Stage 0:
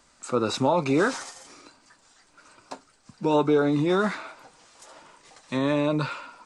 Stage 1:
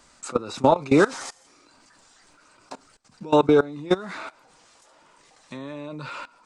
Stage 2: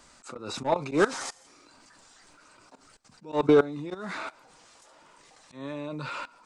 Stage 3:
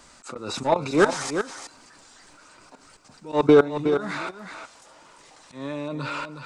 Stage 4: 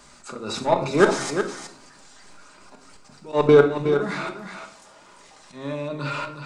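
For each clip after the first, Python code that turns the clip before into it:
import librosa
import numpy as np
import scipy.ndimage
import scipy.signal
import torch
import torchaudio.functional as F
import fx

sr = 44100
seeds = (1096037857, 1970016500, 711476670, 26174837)

y1 = fx.level_steps(x, sr, step_db=21)
y1 = y1 * 10.0 ** (6.5 / 20.0)
y2 = 10.0 ** (-9.5 / 20.0) * np.tanh(y1 / 10.0 ** (-9.5 / 20.0))
y2 = fx.auto_swell(y2, sr, attack_ms=138.0)
y3 = y2 + 10.0 ** (-8.5 / 20.0) * np.pad(y2, (int(366 * sr / 1000.0), 0))[:len(y2)]
y3 = y3 * 10.0 ** (4.5 / 20.0)
y4 = fx.room_shoebox(y3, sr, seeds[0], volume_m3=870.0, walls='furnished', distance_m=1.3)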